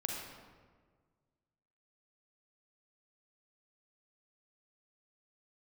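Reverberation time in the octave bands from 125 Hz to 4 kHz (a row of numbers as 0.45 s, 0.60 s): 2.1 s, 1.8 s, 1.7 s, 1.5 s, 1.2 s, 0.95 s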